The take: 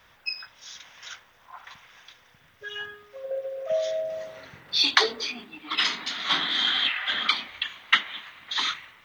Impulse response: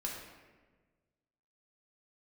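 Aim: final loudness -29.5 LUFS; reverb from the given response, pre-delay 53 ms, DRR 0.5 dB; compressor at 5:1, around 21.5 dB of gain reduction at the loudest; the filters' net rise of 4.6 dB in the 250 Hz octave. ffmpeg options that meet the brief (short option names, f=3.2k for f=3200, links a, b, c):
-filter_complex "[0:a]equalizer=f=250:t=o:g=5.5,acompressor=threshold=-40dB:ratio=5,asplit=2[a][b];[1:a]atrim=start_sample=2205,adelay=53[c];[b][c]afir=irnorm=-1:irlink=0,volume=-2dB[d];[a][d]amix=inputs=2:normalize=0,volume=10dB"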